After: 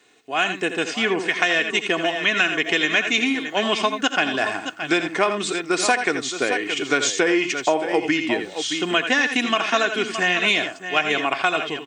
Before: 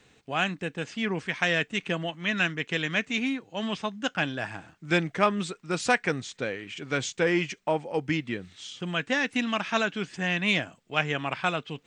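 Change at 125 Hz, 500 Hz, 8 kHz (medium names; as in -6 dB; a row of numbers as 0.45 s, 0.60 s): -5.0 dB, +7.5 dB, +12.0 dB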